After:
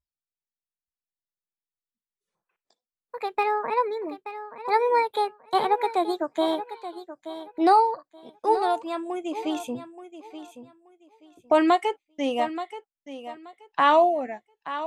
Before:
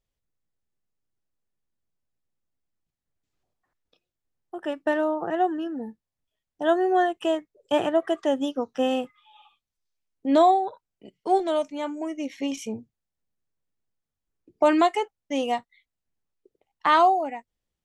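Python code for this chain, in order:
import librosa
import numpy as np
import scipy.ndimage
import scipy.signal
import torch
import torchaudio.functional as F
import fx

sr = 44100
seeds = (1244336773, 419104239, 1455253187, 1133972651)

y = fx.speed_glide(x, sr, from_pct=151, to_pct=89)
y = fx.dynamic_eq(y, sr, hz=6500.0, q=2.5, threshold_db=-56.0, ratio=4.0, max_db=-7)
y = fx.noise_reduce_blind(y, sr, reduce_db=22)
y = fx.echo_feedback(y, sr, ms=878, feedback_pct=22, wet_db=-12.5)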